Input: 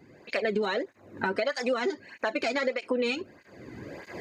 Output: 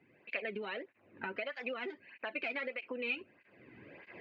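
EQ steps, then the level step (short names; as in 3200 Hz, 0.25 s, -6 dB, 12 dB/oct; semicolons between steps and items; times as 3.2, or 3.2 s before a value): HPF 96 Hz; ladder low-pass 2900 Hz, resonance 65%; -2.5 dB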